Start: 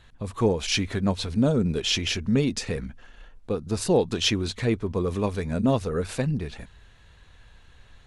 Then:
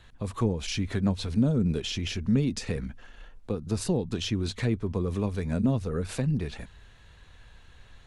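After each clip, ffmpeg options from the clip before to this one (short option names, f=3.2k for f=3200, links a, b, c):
-filter_complex "[0:a]acrossover=split=270[a][b];[b]acompressor=threshold=-32dB:ratio=6[c];[a][c]amix=inputs=2:normalize=0"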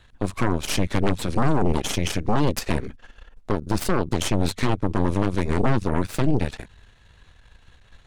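-af "aeval=exprs='0.237*(cos(1*acos(clip(val(0)/0.237,-1,1)))-cos(1*PI/2))+0.106*(cos(8*acos(clip(val(0)/0.237,-1,1)))-cos(8*PI/2))':c=same"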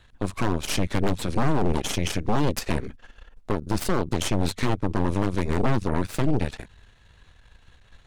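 -af "aeval=exprs='0.282*(abs(mod(val(0)/0.282+3,4)-2)-1)':c=same,volume=-1.5dB"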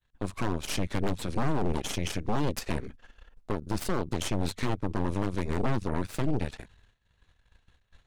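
-af "agate=range=-33dB:threshold=-45dB:ratio=3:detection=peak,volume=-5.5dB"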